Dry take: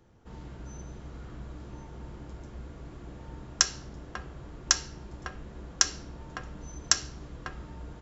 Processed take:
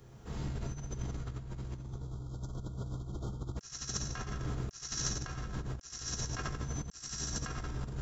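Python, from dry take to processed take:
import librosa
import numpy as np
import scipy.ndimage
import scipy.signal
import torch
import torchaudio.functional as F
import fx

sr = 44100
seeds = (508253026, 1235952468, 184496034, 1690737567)

y = fx.octave_divider(x, sr, octaves=1, level_db=0.0)
y = fx.brickwall_bandstop(y, sr, low_hz=1500.0, high_hz=3100.0, at=(1.8, 3.57))
y = fx.peak_eq(y, sr, hz=100.0, db=4.5, octaves=0.59, at=(5.58, 6.22))
y = fx.echo_split(y, sr, split_hz=560.0, low_ms=328, high_ms=89, feedback_pct=52, wet_db=-7.5)
y = fx.rev_fdn(y, sr, rt60_s=0.97, lf_ratio=1.4, hf_ratio=0.95, size_ms=43.0, drr_db=0.5)
y = fx.over_compress(y, sr, threshold_db=-36.0, ratio=-0.5)
y = fx.high_shelf(y, sr, hz=4800.0, db=10.0)
y = F.gain(torch.from_numpy(y), -3.5).numpy()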